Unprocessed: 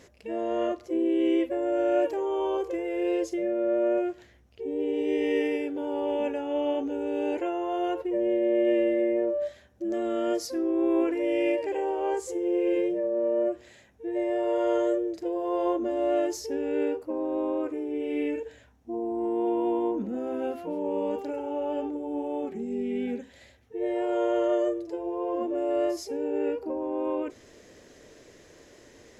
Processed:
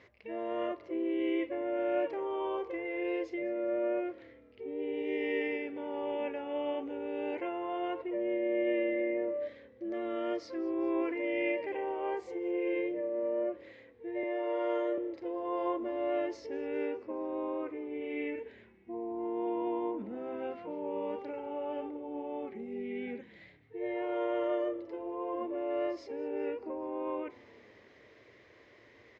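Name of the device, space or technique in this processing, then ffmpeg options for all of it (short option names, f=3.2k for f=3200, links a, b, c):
frequency-shifting delay pedal into a guitar cabinet: -filter_complex "[0:a]asettb=1/sr,asplit=3[a][b][c];[a]atrim=end=14.234[d];[b]atrim=start=14.23:end=14.98,asetpts=PTS-STARTPTS,afade=t=in:d=0.004:c=qsin,afade=t=out:st=0.746:d=0.004:c=qsin,highpass=f=250:w=0.5412,highpass=f=250:w=1.3066[e];[c]atrim=start=14.976[f];[d][e]acrossfade=d=0.004:c1=hsin:c2=qsin[g];[g][f]acrossfade=d=0.004:c1=qsin:c2=hsin,asplit=5[h][i][j][k][l];[i]adelay=203,afreqshift=-33,volume=-22.5dB[m];[j]adelay=406,afreqshift=-66,volume=-27.1dB[n];[k]adelay=609,afreqshift=-99,volume=-31.7dB[o];[l]adelay=812,afreqshift=-132,volume=-36.2dB[p];[h][m][n][o][p]amix=inputs=5:normalize=0,highpass=78,equalizer=f=110:t=q:w=4:g=5,equalizer=f=160:t=q:w=4:g=-7,equalizer=f=260:t=q:w=4:g=-3,equalizer=f=1.1k:t=q:w=4:g=6,equalizer=f=2.1k:t=q:w=4:g=10,lowpass=f=4.3k:w=0.5412,lowpass=f=4.3k:w=1.3066,volume=-7dB"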